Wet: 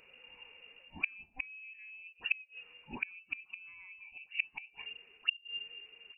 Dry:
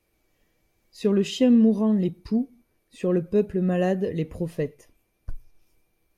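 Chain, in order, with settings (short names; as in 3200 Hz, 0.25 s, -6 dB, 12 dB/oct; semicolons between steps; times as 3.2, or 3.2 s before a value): spectral delay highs early, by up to 0.18 s; reverse; compressor 5:1, threshold -32 dBFS, peak gain reduction 15.5 dB; reverse; flipped gate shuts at -30 dBFS, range -30 dB; inverted band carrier 2800 Hz; gain +11.5 dB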